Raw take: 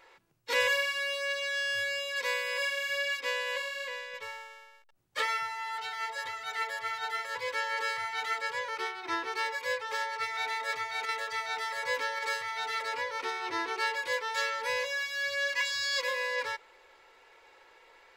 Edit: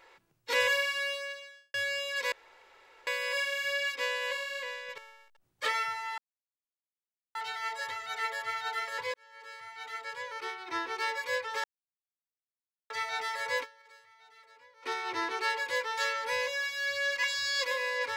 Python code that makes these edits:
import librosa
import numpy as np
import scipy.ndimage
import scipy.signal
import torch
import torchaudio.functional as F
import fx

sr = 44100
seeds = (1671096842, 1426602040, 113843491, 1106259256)

y = fx.edit(x, sr, fx.fade_out_span(start_s=1.07, length_s=0.67, curve='qua'),
    fx.insert_room_tone(at_s=2.32, length_s=0.75),
    fx.cut(start_s=4.23, length_s=0.29),
    fx.insert_silence(at_s=5.72, length_s=1.17),
    fx.fade_in_span(start_s=7.51, length_s=1.95),
    fx.silence(start_s=10.01, length_s=1.26),
    fx.fade_down_up(start_s=12.0, length_s=1.23, db=-24.0, fade_s=0.13, curve='exp'), tone=tone)